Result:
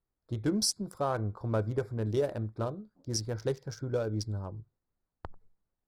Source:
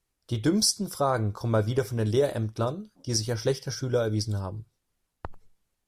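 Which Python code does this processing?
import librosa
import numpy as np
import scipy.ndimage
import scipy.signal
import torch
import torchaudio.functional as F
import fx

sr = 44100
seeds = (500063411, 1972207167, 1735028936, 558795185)

y = fx.wiener(x, sr, points=15)
y = y * librosa.db_to_amplitude(-5.5)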